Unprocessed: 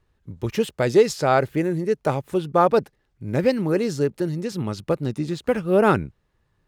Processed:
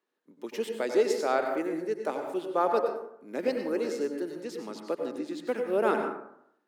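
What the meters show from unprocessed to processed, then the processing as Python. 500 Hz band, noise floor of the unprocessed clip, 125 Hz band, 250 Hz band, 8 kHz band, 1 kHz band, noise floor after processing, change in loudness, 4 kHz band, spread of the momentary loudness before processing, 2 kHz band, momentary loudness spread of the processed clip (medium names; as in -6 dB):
-7.0 dB, -70 dBFS, -26.0 dB, -10.0 dB, -8.5 dB, -7.5 dB, -74 dBFS, -8.0 dB, -8.5 dB, 10 LU, -7.5 dB, 12 LU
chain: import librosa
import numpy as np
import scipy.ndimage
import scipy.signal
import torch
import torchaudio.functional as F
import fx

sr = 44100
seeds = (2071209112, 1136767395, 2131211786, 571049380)

y = scipy.signal.sosfilt(scipy.signal.butter(6, 240.0, 'highpass', fs=sr, output='sos'), x)
y = fx.rev_plate(y, sr, seeds[0], rt60_s=0.73, hf_ratio=0.45, predelay_ms=80, drr_db=4.0)
y = y * 10.0 ** (-9.0 / 20.0)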